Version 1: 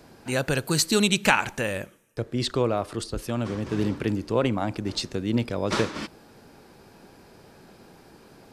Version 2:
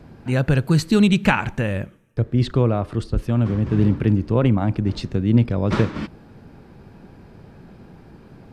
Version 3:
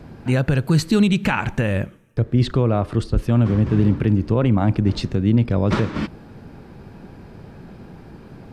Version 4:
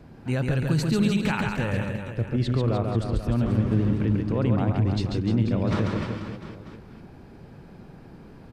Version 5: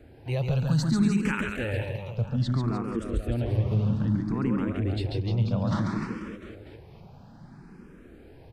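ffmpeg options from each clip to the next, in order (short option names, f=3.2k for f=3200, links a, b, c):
-af "bass=f=250:g=12,treble=f=4k:g=-12,volume=1dB"
-af "alimiter=limit=-11.5dB:level=0:latency=1:release=178,volume=4dB"
-af "aecho=1:1:140|301|486.2|699.1|943.9:0.631|0.398|0.251|0.158|0.1,volume=-7.5dB"
-filter_complex "[0:a]asplit=2[a][b];[b]afreqshift=0.61[c];[a][c]amix=inputs=2:normalize=1"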